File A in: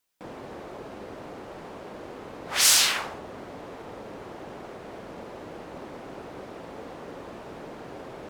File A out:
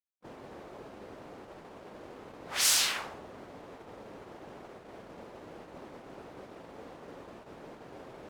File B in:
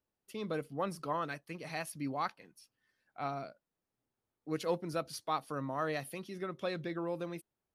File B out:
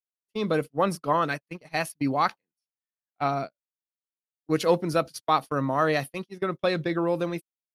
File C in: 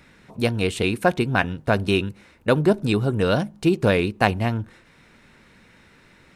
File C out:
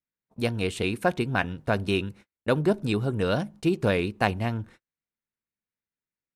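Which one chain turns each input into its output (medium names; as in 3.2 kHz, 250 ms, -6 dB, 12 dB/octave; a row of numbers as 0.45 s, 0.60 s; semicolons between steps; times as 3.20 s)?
gate -41 dBFS, range -41 dB; normalise loudness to -27 LUFS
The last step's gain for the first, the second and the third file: -6.5 dB, +11.5 dB, -5.0 dB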